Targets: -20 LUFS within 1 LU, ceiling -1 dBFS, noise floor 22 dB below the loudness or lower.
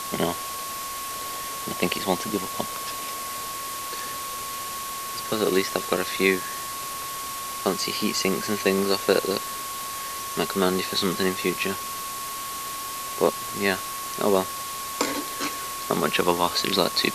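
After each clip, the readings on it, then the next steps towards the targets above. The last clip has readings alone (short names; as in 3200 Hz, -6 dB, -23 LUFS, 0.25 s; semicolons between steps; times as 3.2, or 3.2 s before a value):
steady tone 1100 Hz; tone level -33 dBFS; noise floor -33 dBFS; noise floor target -48 dBFS; loudness -26.0 LUFS; peak -5.0 dBFS; loudness target -20.0 LUFS
-> notch 1100 Hz, Q 30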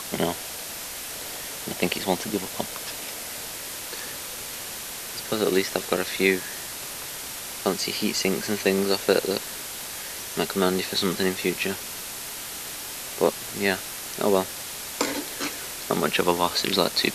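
steady tone none; noise floor -36 dBFS; noise floor target -49 dBFS
-> denoiser 13 dB, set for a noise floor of -36 dBFS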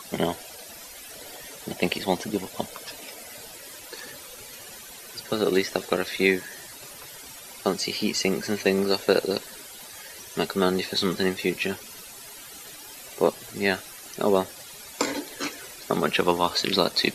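noise floor -43 dBFS; noise floor target -48 dBFS
-> denoiser 6 dB, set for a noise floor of -43 dBFS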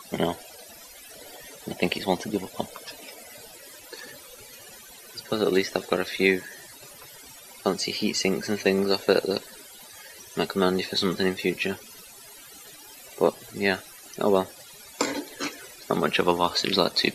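noise floor -47 dBFS; noise floor target -48 dBFS
-> denoiser 6 dB, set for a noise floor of -47 dBFS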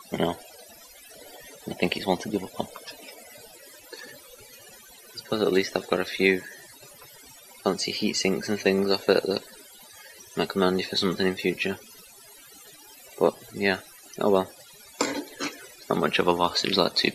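noise floor -50 dBFS; loudness -26.0 LUFS; peak -5.0 dBFS; loudness target -20.0 LUFS
-> gain +6 dB; limiter -1 dBFS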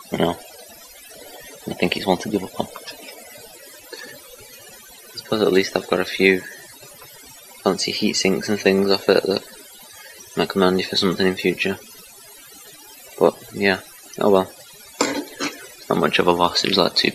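loudness -20.0 LUFS; peak -1.0 dBFS; noise floor -44 dBFS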